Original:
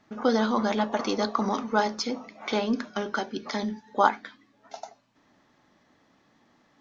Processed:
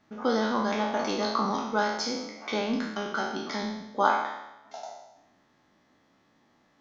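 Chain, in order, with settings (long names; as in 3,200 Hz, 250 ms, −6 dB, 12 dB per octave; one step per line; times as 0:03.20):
peak hold with a decay on every bin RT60 0.92 s
level −4.5 dB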